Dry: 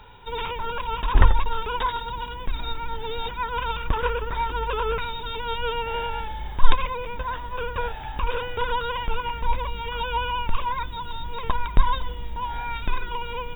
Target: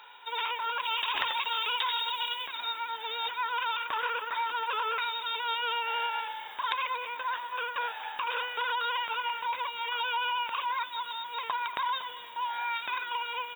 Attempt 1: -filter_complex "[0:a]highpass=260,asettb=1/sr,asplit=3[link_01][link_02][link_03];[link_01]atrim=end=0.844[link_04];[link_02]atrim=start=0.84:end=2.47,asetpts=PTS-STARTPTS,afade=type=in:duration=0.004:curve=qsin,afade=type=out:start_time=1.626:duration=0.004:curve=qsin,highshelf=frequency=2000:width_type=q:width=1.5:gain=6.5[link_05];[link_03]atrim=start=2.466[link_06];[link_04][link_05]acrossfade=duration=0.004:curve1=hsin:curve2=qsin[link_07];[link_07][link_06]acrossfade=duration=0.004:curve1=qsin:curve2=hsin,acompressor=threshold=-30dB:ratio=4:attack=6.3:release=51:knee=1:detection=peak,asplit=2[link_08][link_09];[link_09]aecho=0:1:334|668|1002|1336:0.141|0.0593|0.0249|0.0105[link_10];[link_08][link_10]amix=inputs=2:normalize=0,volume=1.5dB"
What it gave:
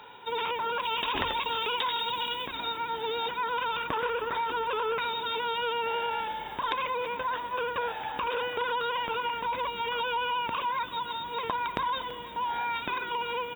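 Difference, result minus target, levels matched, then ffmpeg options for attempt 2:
250 Hz band +17.5 dB; echo 98 ms late
-filter_complex "[0:a]highpass=1000,asettb=1/sr,asplit=3[link_01][link_02][link_03];[link_01]atrim=end=0.844[link_04];[link_02]atrim=start=0.84:end=2.47,asetpts=PTS-STARTPTS,afade=type=in:duration=0.004:curve=qsin,afade=type=out:start_time=1.626:duration=0.004:curve=qsin,highshelf=frequency=2000:width_type=q:width=1.5:gain=6.5[link_05];[link_03]atrim=start=2.466[link_06];[link_04][link_05]acrossfade=duration=0.004:curve1=hsin:curve2=qsin[link_07];[link_07][link_06]acrossfade=duration=0.004:curve1=qsin:curve2=hsin,acompressor=threshold=-30dB:ratio=4:attack=6.3:release=51:knee=1:detection=peak,asplit=2[link_08][link_09];[link_09]aecho=0:1:236|472|708|944:0.141|0.0593|0.0249|0.0105[link_10];[link_08][link_10]amix=inputs=2:normalize=0,volume=1.5dB"

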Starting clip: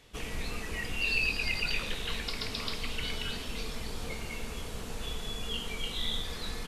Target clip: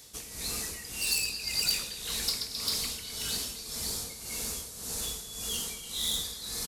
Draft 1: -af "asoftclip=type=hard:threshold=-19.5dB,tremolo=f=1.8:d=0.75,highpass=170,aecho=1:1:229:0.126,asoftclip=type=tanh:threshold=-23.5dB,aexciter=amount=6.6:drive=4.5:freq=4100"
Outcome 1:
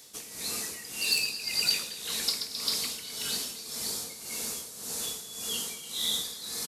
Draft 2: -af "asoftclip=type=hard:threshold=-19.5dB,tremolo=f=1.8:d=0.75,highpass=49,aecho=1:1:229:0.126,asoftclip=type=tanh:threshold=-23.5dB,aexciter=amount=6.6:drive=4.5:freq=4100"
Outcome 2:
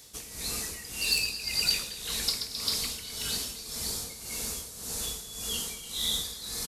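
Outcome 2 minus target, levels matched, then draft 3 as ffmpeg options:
soft clipping: distortion −10 dB
-af "asoftclip=type=hard:threshold=-19.5dB,tremolo=f=1.8:d=0.75,highpass=49,aecho=1:1:229:0.126,asoftclip=type=tanh:threshold=-31.5dB,aexciter=amount=6.6:drive=4.5:freq=4100"

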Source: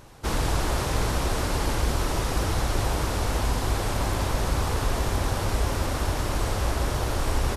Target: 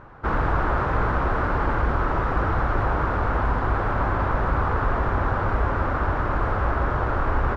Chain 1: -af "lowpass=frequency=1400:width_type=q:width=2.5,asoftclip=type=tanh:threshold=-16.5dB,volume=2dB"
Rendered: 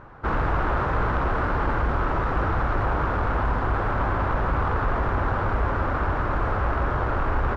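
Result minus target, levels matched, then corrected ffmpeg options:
soft clipping: distortion +12 dB
-af "lowpass=frequency=1400:width_type=q:width=2.5,asoftclip=type=tanh:threshold=-9dB,volume=2dB"

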